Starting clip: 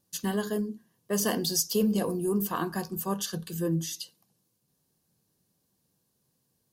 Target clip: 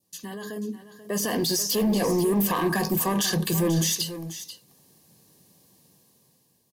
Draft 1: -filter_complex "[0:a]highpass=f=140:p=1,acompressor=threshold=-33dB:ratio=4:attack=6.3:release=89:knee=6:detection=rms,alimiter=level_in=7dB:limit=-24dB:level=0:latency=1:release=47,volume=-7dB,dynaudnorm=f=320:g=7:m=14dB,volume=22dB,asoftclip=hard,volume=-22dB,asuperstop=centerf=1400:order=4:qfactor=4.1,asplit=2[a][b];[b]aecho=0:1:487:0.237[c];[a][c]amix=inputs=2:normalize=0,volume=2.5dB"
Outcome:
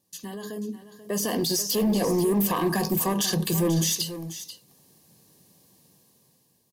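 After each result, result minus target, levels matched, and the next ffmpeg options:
compressor: peak gain reduction +10.5 dB; 2000 Hz band -3.0 dB
-filter_complex "[0:a]highpass=f=140:p=1,alimiter=level_in=7dB:limit=-24dB:level=0:latency=1:release=47,volume=-7dB,dynaudnorm=f=320:g=7:m=14dB,volume=22dB,asoftclip=hard,volume=-22dB,asuperstop=centerf=1400:order=4:qfactor=4.1,asplit=2[a][b];[b]aecho=0:1:487:0.237[c];[a][c]amix=inputs=2:normalize=0,volume=2.5dB"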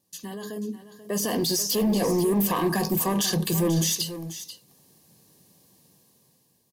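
2000 Hz band -3.0 dB
-filter_complex "[0:a]highpass=f=140:p=1,adynamicequalizer=threshold=0.00398:dfrequency=1600:dqfactor=1.4:tfrequency=1600:tqfactor=1.4:attack=5:release=100:ratio=0.45:range=2.5:mode=boostabove:tftype=bell,alimiter=level_in=7dB:limit=-24dB:level=0:latency=1:release=47,volume=-7dB,dynaudnorm=f=320:g=7:m=14dB,volume=22dB,asoftclip=hard,volume=-22dB,asuperstop=centerf=1400:order=4:qfactor=4.1,asplit=2[a][b];[b]aecho=0:1:487:0.237[c];[a][c]amix=inputs=2:normalize=0,volume=2.5dB"

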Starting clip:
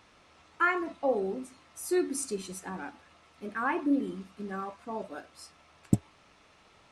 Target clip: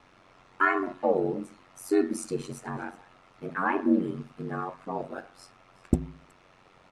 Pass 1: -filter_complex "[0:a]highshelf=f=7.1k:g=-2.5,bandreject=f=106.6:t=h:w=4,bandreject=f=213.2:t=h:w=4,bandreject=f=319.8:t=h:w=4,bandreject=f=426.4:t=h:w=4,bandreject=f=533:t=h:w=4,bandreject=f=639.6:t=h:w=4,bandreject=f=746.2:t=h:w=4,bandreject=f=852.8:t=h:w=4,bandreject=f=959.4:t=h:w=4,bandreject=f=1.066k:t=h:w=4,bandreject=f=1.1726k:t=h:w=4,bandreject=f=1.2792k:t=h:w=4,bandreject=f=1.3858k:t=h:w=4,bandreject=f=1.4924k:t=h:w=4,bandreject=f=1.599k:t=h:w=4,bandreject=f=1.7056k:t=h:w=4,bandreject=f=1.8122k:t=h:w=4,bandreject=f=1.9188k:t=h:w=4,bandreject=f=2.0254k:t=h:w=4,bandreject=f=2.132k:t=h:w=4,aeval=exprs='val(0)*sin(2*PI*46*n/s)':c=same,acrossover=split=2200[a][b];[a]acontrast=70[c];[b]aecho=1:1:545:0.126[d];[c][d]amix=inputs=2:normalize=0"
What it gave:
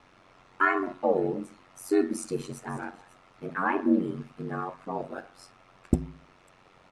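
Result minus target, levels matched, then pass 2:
echo 0.177 s late
-filter_complex "[0:a]highshelf=f=7.1k:g=-2.5,bandreject=f=106.6:t=h:w=4,bandreject=f=213.2:t=h:w=4,bandreject=f=319.8:t=h:w=4,bandreject=f=426.4:t=h:w=4,bandreject=f=533:t=h:w=4,bandreject=f=639.6:t=h:w=4,bandreject=f=746.2:t=h:w=4,bandreject=f=852.8:t=h:w=4,bandreject=f=959.4:t=h:w=4,bandreject=f=1.066k:t=h:w=4,bandreject=f=1.1726k:t=h:w=4,bandreject=f=1.2792k:t=h:w=4,bandreject=f=1.3858k:t=h:w=4,bandreject=f=1.4924k:t=h:w=4,bandreject=f=1.599k:t=h:w=4,bandreject=f=1.7056k:t=h:w=4,bandreject=f=1.8122k:t=h:w=4,bandreject=f=1.9188k:t=h:w=4,bandreject=f=2.0254k:t=h:w=4,bandreject=f=2.132k:t=h:w=4,aeval=exprs='val(0)*sin(2*PI*46*n/s)':c=same,acrossover=split=2200[a][b];[a]acontrast=70[c];[b]aecho=1:1:368:0.126[d];[c][d]amix=inputs=2:normalize=0"

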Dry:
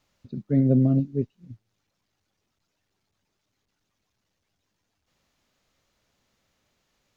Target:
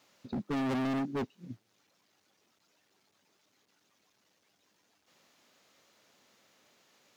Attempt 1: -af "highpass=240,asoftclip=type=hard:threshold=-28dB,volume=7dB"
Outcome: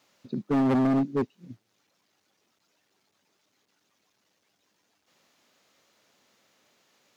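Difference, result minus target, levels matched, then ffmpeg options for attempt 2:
hard clip: distortion -4 dB
-af "highpass=240,asoftclip=type=hard:threshold=-37.5dB,volume=7dB"

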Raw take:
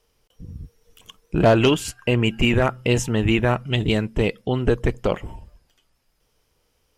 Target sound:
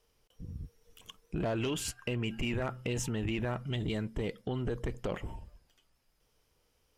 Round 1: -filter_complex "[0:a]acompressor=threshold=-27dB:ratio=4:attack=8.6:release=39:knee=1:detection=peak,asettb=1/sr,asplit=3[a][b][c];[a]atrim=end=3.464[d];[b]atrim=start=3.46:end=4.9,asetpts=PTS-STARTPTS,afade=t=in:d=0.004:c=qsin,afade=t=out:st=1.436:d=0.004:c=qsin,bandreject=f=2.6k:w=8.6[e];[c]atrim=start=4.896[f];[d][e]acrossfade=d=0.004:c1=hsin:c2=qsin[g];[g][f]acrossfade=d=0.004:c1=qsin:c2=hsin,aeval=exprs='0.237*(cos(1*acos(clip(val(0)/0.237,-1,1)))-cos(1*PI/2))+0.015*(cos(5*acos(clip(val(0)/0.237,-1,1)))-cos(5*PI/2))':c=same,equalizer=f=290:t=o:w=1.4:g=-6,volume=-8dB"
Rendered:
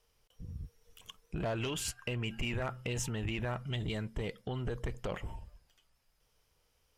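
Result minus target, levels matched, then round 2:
250 Hz band -2.5 dB
-filter_complex "[0:a]acompressor=threshold=-27dB:ratio=4:attack=8.6:release=39:knee=1:detection=peak,asettb=1/sr,asplit=3[a][b][c];[a]atrim=end=3.464[d];[b]atrim=start=3.46:end=4.9,asetpts=PTS-STARTPTS,afade=t=in:d=0.004:c=qsin,afade=t=out:st=1.436:d=0.004:c=qsin,bandreject=f=2.6k:w=8.6[e];[c]atrim=start=4.896[f];[d][e]acrossfade=d=0.004:c1=hsin:c2=qsin[g];[g][f]acrossfade=d=0.004:c1=qsin:c2=hsin,aeval=exprs='0.237*(cos(1*acos(clip(val(0)/0.237,-1,1)))-cos(1*PI/2))+0.015*(cos(5*acos(clip(val(0)/0.237,-1,1)))-cos(5*PI/2))':c=same,volume=-8dB"

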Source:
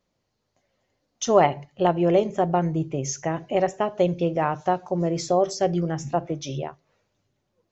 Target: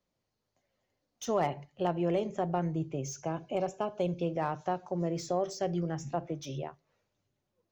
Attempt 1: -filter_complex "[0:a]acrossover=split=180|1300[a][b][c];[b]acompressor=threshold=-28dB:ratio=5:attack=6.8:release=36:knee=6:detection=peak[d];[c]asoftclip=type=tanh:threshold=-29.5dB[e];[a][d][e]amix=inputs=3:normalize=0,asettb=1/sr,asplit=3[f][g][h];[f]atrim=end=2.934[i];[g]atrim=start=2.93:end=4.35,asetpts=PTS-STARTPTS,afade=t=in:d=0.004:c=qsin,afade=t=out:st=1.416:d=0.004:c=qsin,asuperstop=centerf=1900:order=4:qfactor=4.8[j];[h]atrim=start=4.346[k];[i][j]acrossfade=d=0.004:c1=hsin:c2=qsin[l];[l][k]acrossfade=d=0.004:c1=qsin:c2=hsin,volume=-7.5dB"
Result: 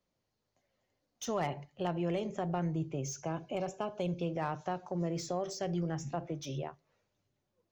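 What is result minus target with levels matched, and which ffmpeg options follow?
compressor: peak gain reduction +6.5 dB
-filter_complex "[0:a]acrossover=split=180|1300[a][b][c];[b]acompressor=threshold=-20dB:ratio=5:attack=6.8:release=36:knee=6:detection=peak[d];[c]asoftclip=type=tanh:threshold=-29.5dB[e];[a][d][e]amix=inputs=3:normalize=0,asettb=1/sr,asplit=3[f][g][h];[f]atrim=end=2.934[i];[g]atrim=start=2.93:end=4.35,asetpts=PTS-STARTPTS,afade=t=in:d=0.004:c=qsin,afade=t=out:st=1.416:d=0.004:c=qsin,asuperstop=centerf=1900:order=4:qfactor=4.8[j];[h]atrim=start=4.346[k];[i][j]acrossfade=d=0.004:c1=hsin:c2=qsin[l];[l][k]acrossfade=d=0.004:c1=qsin:c2=hsin,volume=-7.5dB"

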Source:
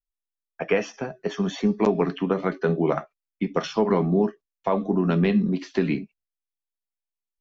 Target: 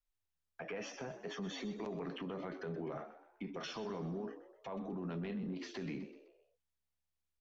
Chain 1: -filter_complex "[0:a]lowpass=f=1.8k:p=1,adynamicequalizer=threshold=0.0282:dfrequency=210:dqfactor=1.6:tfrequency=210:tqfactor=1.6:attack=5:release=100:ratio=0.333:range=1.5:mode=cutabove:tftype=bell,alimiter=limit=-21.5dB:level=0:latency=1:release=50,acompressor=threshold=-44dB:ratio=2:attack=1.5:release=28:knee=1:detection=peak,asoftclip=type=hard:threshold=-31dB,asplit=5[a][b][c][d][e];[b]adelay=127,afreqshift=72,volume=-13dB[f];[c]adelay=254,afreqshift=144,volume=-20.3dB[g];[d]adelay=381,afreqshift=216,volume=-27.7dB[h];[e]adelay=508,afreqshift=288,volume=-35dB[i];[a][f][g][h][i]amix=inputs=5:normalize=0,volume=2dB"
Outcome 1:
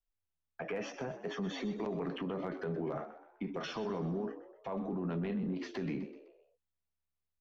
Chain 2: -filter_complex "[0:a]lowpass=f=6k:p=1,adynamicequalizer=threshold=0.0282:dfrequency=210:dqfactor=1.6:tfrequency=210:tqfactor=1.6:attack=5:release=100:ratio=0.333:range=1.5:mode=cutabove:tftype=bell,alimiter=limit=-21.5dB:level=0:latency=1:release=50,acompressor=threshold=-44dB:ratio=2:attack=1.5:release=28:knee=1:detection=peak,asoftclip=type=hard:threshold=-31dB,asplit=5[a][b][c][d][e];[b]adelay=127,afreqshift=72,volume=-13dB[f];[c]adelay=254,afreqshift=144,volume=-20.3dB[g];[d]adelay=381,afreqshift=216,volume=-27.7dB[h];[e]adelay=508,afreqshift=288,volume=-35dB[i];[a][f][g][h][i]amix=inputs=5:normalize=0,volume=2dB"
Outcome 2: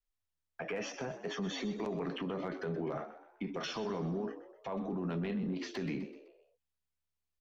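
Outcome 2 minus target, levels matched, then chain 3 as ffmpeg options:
compressor: peak gain reduction -5 dB
-filter_complex "[0:a]lowpass=f=6k:p=1,adynamicequalizer=threshold=0.0282:dfrequency=210:dqfactor=1.6:tfrequency=210:tqfactor=1.6:attack=5:release=100:ratio=0.333:range=1.5:mode=cutabove:tftype=bell,alimiter=limit=-21.5dB:level=0:latency=1:release=50,acompressor=threshold=-54dB:ratio=2:attack=1.5:release=28:knee=1:detection=peak,asoftclip=type=hard:threshold=-31dB,asplit=5[a][b][c][d][e];[b]adelay=127,afreqshift=72,volume=-13dB[f];[c]adelay=254,afreqshift=144,volume=-20.3dB[g];[d]adelay=381,afreqshift=216,volume=-27.7dB[h];[e]adelay=508,afreqshift=288,volume=-35dB[i];[a][f][g][h][i]amix=inputs=5:normalize=0,volume=2dB"

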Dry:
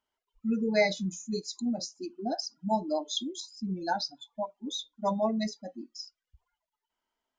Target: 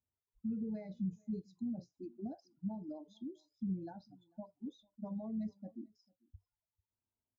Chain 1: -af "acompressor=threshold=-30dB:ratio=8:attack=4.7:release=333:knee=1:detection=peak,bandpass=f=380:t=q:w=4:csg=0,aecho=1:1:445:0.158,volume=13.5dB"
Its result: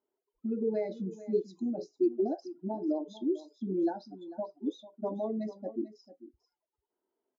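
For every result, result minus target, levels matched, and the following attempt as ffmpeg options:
500 Hz band +10.0 dB; echo-to-direct +12 dB
-af "acompressor=threshold=-30dB:ratio=8:attack=4.7:release=333:knee=1:detection=peak,bandpass=f=100:t=q:w=4:csg=0,aecho=1:1:445:0.158,volume=13.5dB"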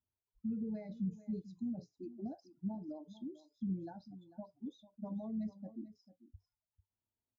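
echo-to-direct +12 dB
-af "acompressor=threshold=-30dB:ratio=8:attack=4.7:release=333:knee=1:detection=peak,bandpass=f=100:t=q:w=4:csg=0,aecho=1:1:445:0.0398,volume=13.5dB"

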